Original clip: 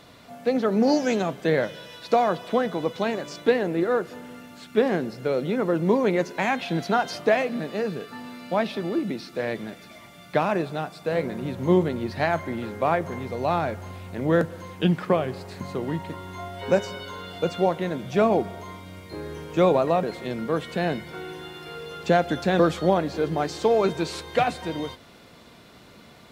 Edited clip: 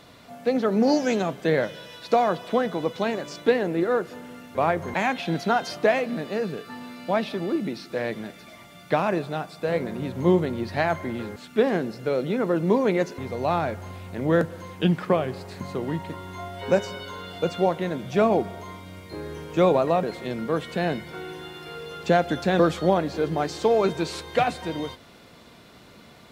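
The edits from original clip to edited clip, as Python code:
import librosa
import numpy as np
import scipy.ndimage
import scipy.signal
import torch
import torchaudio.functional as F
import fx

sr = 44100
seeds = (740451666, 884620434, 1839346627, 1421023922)

y = fx.edit(x, sr, fx.swap(start_s=4.55, length_s=1.82, other_s=12.79, other_length_s=0.39), tone=tone)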